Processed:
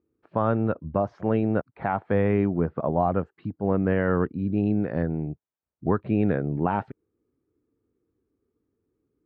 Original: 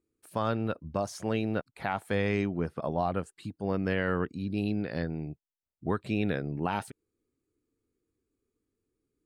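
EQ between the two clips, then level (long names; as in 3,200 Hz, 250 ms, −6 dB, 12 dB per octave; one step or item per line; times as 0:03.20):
high-pass filter 55 Hz
low-pass filter 1,400 Hz 12 dB per octave
high-frequency loss of the air 140 metres
+7.0 dB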